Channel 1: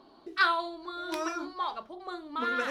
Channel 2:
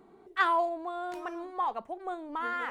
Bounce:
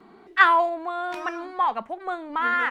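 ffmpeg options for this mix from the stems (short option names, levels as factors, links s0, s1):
-filter_complex "[0:a]volume=0.266[s0];[1:a]equalizer=f=220:w=2.2:g=8.5,adelay=4.5,volume=1.19,asplit=2[s1][s2];[s2]apad=whole_len=119390[s3];[s0][s3]sidechaincompress=threshold=0.0251:ratio=8:attack=16:release=390[s4];[s4][s1]amix=inputs=2:normalize=0,equalizer=f=1900:t=o:w=2.3:g=11"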